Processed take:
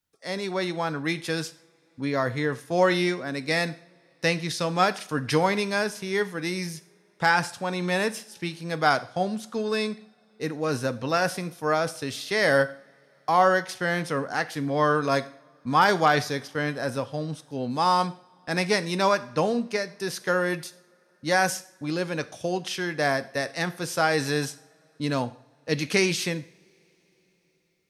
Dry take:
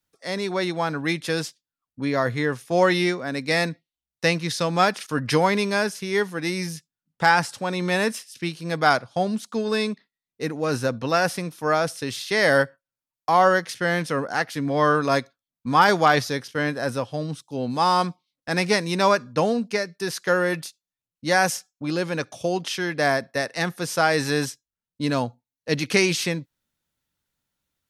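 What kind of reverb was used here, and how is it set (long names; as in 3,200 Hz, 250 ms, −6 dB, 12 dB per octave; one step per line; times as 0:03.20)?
coupled-rooms reverb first 0.52 s, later 5 s, from −28 dB, DRR 12.5 dB
level −3 dB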